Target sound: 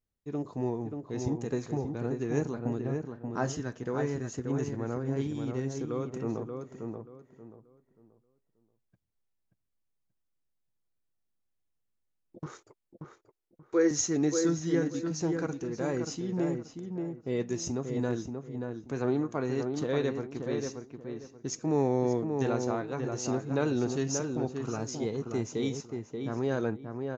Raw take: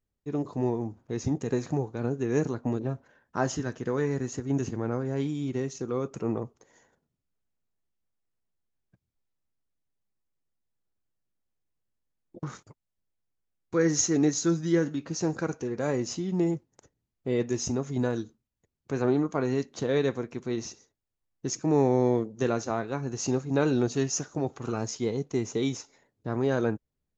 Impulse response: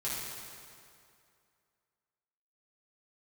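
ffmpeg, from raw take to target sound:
-filter_complex "[0:a]asettb=1/sr,asplit=3[link_01][link_02][link_03];[link_01]atrim=end=12.464[link_04];[link_02]atrim=start=12.46:end=13.91,asetpts=PTS-STARTPTS,afade=type=in:duration=0.004:curve=qsin,afade=type=out:start_time=1.446:duration=0.004:curve=qsin,lowshelf=frequency=270:width_type=q:width=3:gain=-9.5[link_05];[link_03]atrim=start=13.906[link_06];[link_04][link_05]acrossfade=duration=0.004:curve1=hsin:curve2=qsin[link_07];[link_07][link_06]acrossfade=duration=0.004:curve1=qsin:curve2=hsin,asplit=2[link_08][link_09];[link_09]adelay=582,lowpass=frequency=2000:poles=1,volume=-5dB,asplit=2[link_10][link_11];[link_11]adelay=582,lowpass=frequency=2000:poles=1,volume=0.27,asplit=2[link_12][link_13];[link_13]adelay=582,lowpass=frequency=2000:poles=1,volume=0.27,asplit=2[link_14][link_15];[link_15]adelay=582,lowpass=frequency=2000:poles=1,volume=0.27[link_16];[link_08][link_10][link_12][link_14][link_16]amix=inputs=5:normalize=0,volume=-4dB"

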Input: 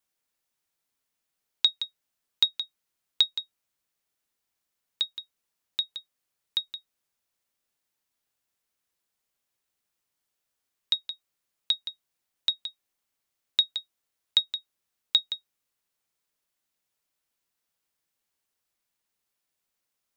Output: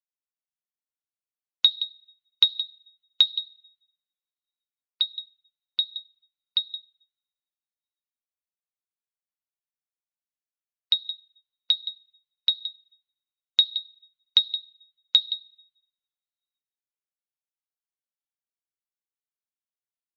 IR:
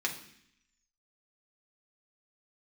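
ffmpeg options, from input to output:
-filter_complex "[0:a]asplit=2[link_01][link_02];[1:a]atrim=start_sample=2205,asetrate=26019,aresample=44100,highshelf=frequency=2800:gain=5.5[link_03];[link_02][link_03]afir=irnorm=-1:irlink=0,volume=-16.5dB[link_04];[link_01][link_04]amix=inputs=2:normalize=0,afftdn=noise_reduction=24:noise_floor=-41"

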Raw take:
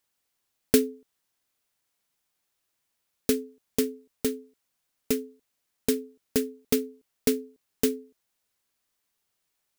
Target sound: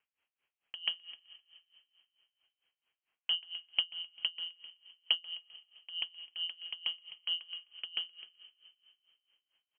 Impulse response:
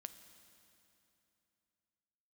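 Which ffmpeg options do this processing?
-filter_complex "[0:a]acompressor=threshold=-30dB:ratio=6,asplit=2[link_01][link_02];[1:a]atrim=start_sample=2205,adelay=136[link_03];[link_02][link_03]afir=irnorm=-1:irlink=0,volume=1.5dB[link_04];[link_01][link_04]amix=inputs=2:normalize=0,lowpass=frequency=2800:width_type=q:width=0.5098,lowpass=frequency=2800:width_type=q:width=0.6013,lowpass=frequency=2800:width_type=q:width=0.9,lowpass=frequency=2800:width_type=q:width=2.563,afreqshift=-3300,equalizer=frequency=2600:width_type=o:width=0.55:gain=7.5,aecho=1:1:258|516:0.141|0.0367,aeval=exprs='val(0)*pow(10,-22*(0.5-0.5*cos(2*PI*4.5*n/s))/20)':channel_layout=same"

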